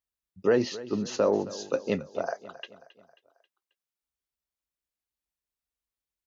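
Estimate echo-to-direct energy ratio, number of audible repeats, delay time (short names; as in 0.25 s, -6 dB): -16.0 dB, 3, 0.269 s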